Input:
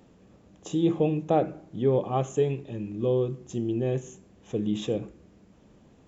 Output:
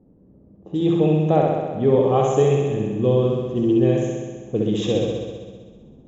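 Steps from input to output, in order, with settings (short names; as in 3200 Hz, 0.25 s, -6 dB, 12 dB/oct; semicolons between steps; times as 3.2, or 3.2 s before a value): low-pass opened by the level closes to 390 Hz, open at -24 dBFS; vocal rider 2 s; flutter echo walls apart 11.1 m, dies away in 1.5 s; gain +5.5 dB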